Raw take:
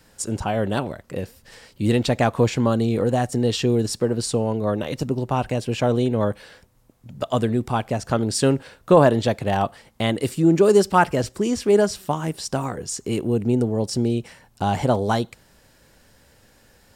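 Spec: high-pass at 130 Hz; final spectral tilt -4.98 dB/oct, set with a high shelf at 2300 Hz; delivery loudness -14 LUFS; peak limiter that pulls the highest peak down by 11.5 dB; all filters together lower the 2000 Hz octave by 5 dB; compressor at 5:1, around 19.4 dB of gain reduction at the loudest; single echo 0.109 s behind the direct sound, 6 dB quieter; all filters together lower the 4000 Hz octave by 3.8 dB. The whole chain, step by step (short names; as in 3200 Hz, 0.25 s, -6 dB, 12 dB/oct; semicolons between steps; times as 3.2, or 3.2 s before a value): HPF 130 Hz; bell 2000 Hz -7.5 dB; high shelf 2300 Hz +3.5 dB; bell 4000 Hz -6.5 dB; compressor 5:1, threshold -34 dBFS; limiter -30 dBFS; echo 0.109 s -6 dB; gain +26 dB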